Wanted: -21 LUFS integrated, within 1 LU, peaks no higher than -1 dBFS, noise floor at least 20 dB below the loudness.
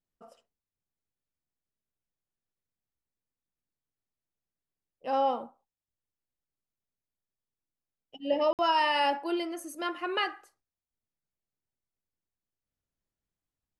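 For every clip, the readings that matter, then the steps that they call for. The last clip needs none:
dropouts 1; longest dropout 58 ms; loudness -29.0 LUFS; peak -15.0 dBFS; loudness target -21.0 LUFS
-> interpolate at 8.53, 58 ms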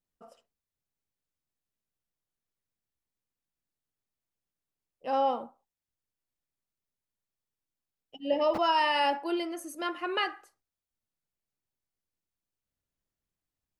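dropouts 0; loudness -29.0 LUFS; peak -15.0 dBFS; loudness target -21.0 LUFS
-> gain +8 dB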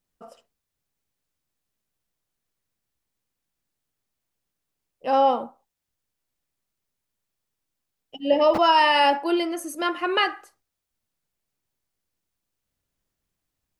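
loudness -21.0 LUFS; peak -7.0 dBFS; noise floor -83 dBFS

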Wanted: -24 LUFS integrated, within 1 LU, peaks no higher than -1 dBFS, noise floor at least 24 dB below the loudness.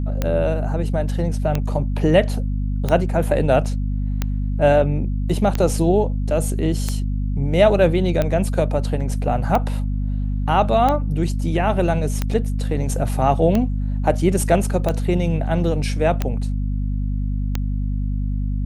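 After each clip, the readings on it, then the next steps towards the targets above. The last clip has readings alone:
clicks 14; hum 50 Hz; harmonics up to 250 Hz; hum level -19 dBFS; loudness -20.5 LUFS; peak -2.0 dBFS; loudness target -24.0 LUFS
-> de-click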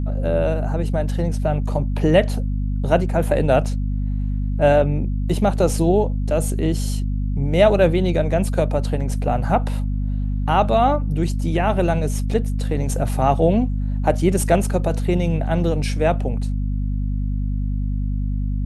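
clicks 0; hum 50 Hz; harmonics up to 250 Hz; hum level -19 dBFS
-> notches 50/100/150/200/250 Hz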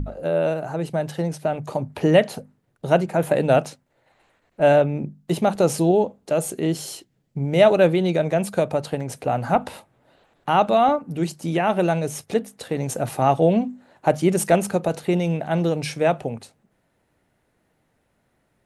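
hum none; loudness -21.5 LUFS; peak -3.0 dBFS; loudness target -24.0 LUFS
-> gain -2.5 dB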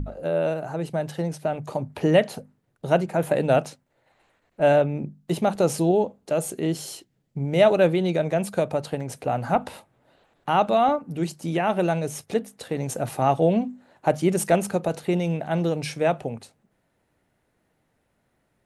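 loudness -24.0 LUFS; peak -5.5 dBFS; noise floor -71 dBFS

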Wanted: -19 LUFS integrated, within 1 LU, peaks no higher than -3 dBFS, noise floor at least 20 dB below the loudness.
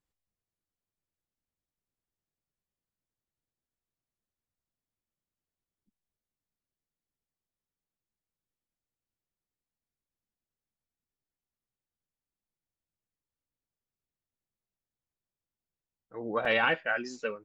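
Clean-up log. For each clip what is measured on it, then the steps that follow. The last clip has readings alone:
dropouts 1; longest dropout 3.6 ms; loudness -29.0 LUFS; peak -15.5 dBFS; loudness target -19.0 LUFS
-> interpolate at 16.45, 3.6 ms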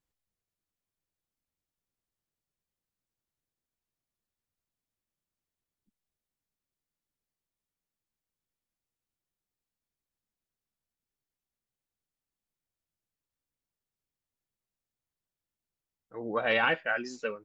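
dropouts 0; loudness -29.0 LUFS; peak -15.5 dBFS; loudness target -19.0 LUFS
-> gain +10 dB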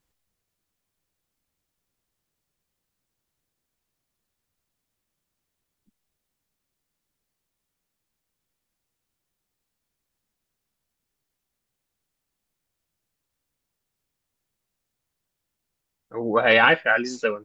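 loudness -19.0 LUFS; peak -5.5 dBFS; noise floor -82 dBFS

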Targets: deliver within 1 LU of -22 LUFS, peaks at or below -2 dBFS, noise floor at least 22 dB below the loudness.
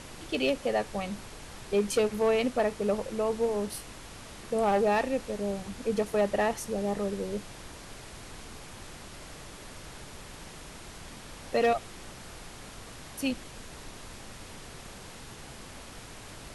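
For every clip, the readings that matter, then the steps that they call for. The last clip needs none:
clipped 0.2%; flat tops at -18.5 dBFS; noise floor -46 dBFS; noise floor target -52 dBFS; loudness -29.5 LUFS; peak -18.5 dBFS; loudness target -22.0 LUFS
-> clip repair -18.5 dBFS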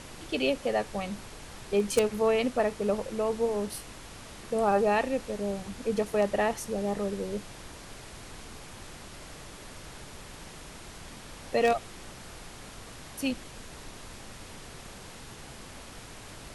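clipped 0.0%; noise floor -46 dBFS; noise floor target -52 dBFS
-> noise print and reduce 6 dB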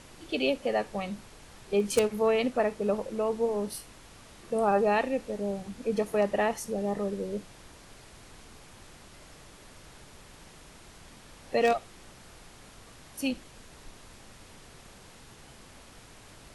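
noise floor -52 dBFS; loudness -29.5 LUFS; peak -10.5 dBFS; loudness target -22.0 LUFS
-> gain +7.5 dB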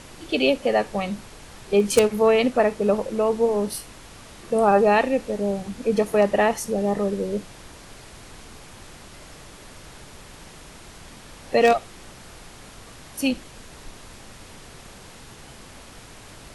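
loudness -22.0 LUFS; peak -3.0 dBFS; noise floor -45 dBFS

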